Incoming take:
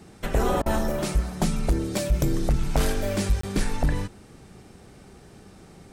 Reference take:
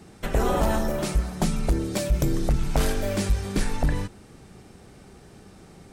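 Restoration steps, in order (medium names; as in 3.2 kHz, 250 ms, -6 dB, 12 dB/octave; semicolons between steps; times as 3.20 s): interpolate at 3.41 s, 24 ms; interpolate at 0.62 s, 39 ms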